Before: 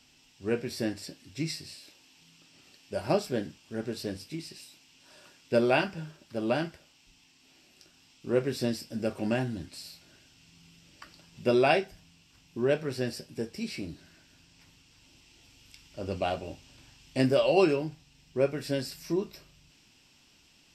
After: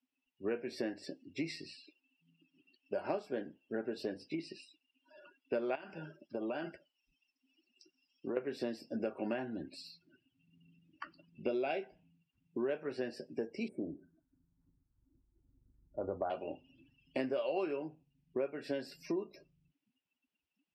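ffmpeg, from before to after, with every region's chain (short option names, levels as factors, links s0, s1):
-filter_complex "[0:a]asettb=1/sr,asplit=3[s0][s1][s2];[s0]atrim=end=5.754[s3];[s1]atrim=start=5.75:end=8.37,asetpts=PTS-STARTPTS,afade=t=in:d=0.004:c=qsin,afade=t=out:st=2.616:d=0.004:c=qsin,aemphasis=mode=production:type=cd,acompressor=threshold=0.02:ratio=12:attack=3.2:release=140:knee=1:detection=peak[s4];[s2]atrim=start=8.366[s5];[s3][s4]acrossfade=d=0.004:c1=hsin:c2=qsin[s6];[s6][s5]acrossfade=d=0.004:c1=qsin:c2=hsin,asettb=1/sr,asplit=3[s7][s8][s9];[s7]atrim=end=11.424[s10];[s8]atrim=start=11.42:end=11.83,asetpts=PTS-STARTPTS,afade=t=in:d=0.004:c=qsin,afade=t=out:st=0.406:d=0.004:c=qsin,lowpass=9600,equalizer=f=1100:w=2.5:g=-12,bandreject=f=1800:w=7[s11];[s9]atrim=start=11.826[s12];[s10][s11]acrossfade=d=0.004:c1=hsin:c2=qsin[s13];[s13][s12]acrossfade=d=0.004:c1=qsin:c2=hsin,asettb=1/sr,asplit=3[s14][s15][s16];[s14]atrim=end=13.684[s17];[s15]atrim=start=13.68:end=16.3,asetpts=PTS-STARTPTS,afade=t=in:d=0.004:c=qsin,afade=t=out:st=2.616:d=0.004:c=qsin,asuperstop=centerf=3700:order=8:qfactor=0.53,asubboost=boost=7.5:cutoff=84[s18];[s16]atrim=start=16.296[s19];[s17][s18]acrossfade=d=0.004:c1=hsin:c2=qsin[s20];[s20][s19]acrossfade=d=0.004:c1=qsin:c2=hsin,afftdn=nr=34:nf=-50,acrossover=split=230 3100:gain=0.0891 1 0.158[s21][s22][s23];[s21][s22][s23]amix=inputs=3:normalize=0,acompressor=threshold=0.01:ratio=5,volume=1.88"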